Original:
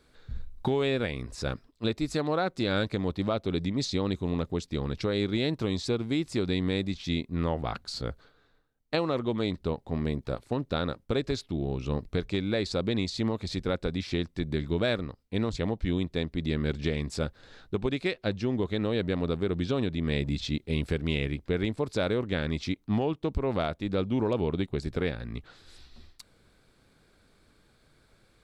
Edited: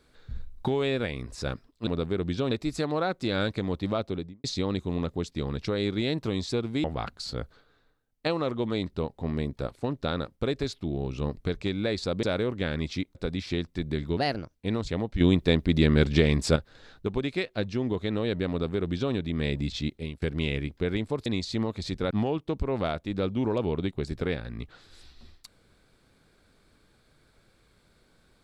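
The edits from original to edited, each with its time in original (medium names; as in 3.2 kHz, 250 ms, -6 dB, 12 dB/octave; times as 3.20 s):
3.37–3.80 s: studio fade out
6.20–7.52 s: delete
12.91–13.76 s: swap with 21.94–22.86 s
14.78–15.23 s: speed 119%
15.89–17.24 s: gain +8 dB
19.18–19.82 s: copy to 1.87 s
20.56–20.90 s: fade out, to -24 dB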